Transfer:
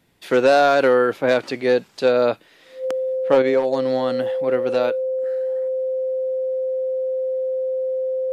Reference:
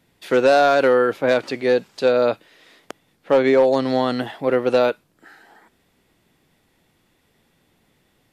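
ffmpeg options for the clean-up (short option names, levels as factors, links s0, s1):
-af "bandreject=f=520:w=30,asetnsamples=n=441:p=0,asendcmd='3.42 volume volume 4.5dB',volume=1"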